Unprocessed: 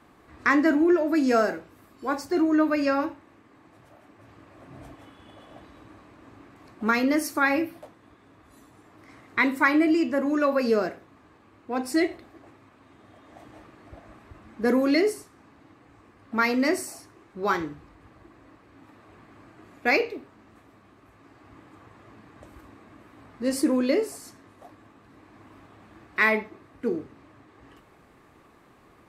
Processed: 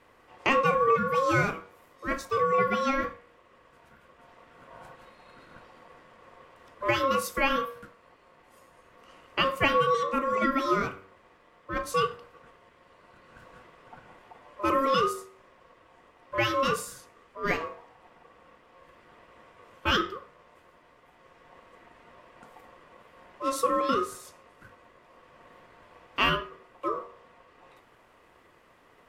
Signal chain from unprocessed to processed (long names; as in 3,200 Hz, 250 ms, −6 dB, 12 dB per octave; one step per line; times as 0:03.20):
ring modulation 810 Hz
hum removal 95.6 Hz, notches 27